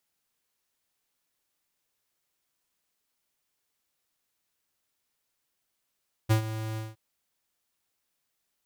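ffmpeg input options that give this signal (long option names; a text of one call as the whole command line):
ffmpeg -f lavfi -i "aevalsrc='0.1*(2*lt(mod(110*t,1),0.5)-1)':duration=0.666:sample_rate=44100,afade=type=in:duration=0.021,afade=type=out:start_time=0.021:duration=0.102:silence=0.211,afade=type=out:start_time=0.48:duration=0.186" out.wav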